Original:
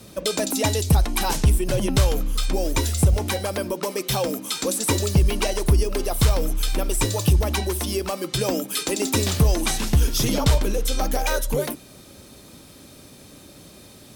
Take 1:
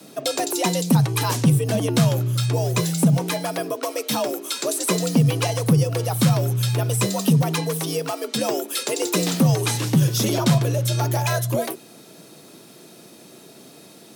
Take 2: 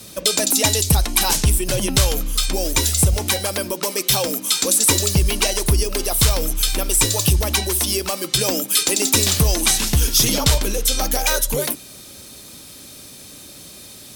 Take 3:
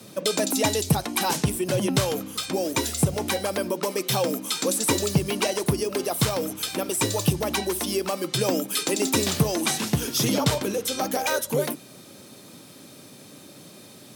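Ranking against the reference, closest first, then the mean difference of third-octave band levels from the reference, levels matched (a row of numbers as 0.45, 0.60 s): 3, 2, 1; 1.0, 4.0, 5.5 dB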